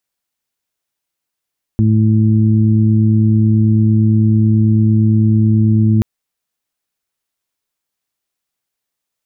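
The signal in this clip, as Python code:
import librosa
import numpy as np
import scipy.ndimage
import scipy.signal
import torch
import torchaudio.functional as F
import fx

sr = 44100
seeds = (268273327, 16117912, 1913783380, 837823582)

y = fx.additive_steady(sr, length_s=4.23, hz=109.0, level_db=-10, upper_db=(-3, -12.0))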